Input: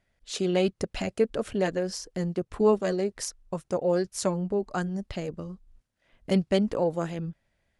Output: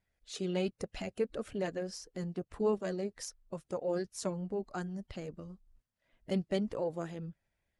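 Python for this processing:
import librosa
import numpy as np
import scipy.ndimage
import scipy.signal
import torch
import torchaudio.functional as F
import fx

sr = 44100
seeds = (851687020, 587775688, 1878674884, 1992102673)

y = fx.spec_quant(x, sr, step_db=15)
y = y * librosa.db_to_amplitude(-8.5)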